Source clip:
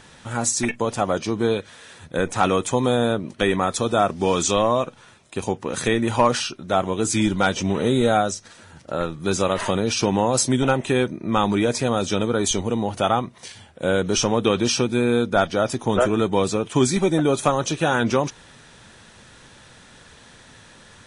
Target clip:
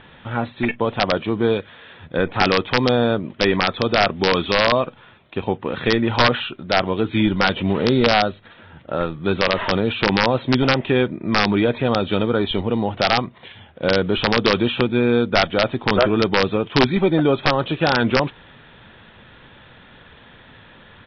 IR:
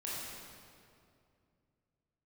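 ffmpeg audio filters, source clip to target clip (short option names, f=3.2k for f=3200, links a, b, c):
-af "aresample=8000,aresample=44100,aresample=11025,aeval=exprs='(mod(2.66*val(0)+1,2)-1)/2.66':c=same,aresample=44100,volume=2.5dB"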